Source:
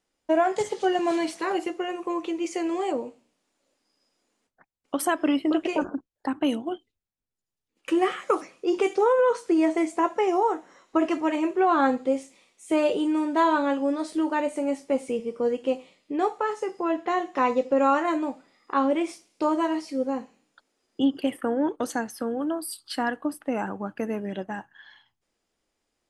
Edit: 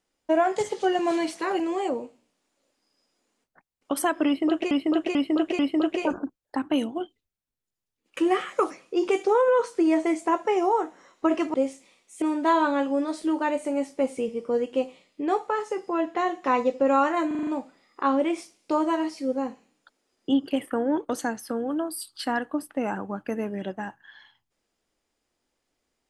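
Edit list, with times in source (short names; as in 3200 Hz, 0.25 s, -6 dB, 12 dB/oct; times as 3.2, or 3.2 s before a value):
1.6–2.63 cut
5.3–5.74 loop, 4 plays
11.25–12.04 cut
12.72–13.13 cut
18.18 stutter 0.04 s, 6 plays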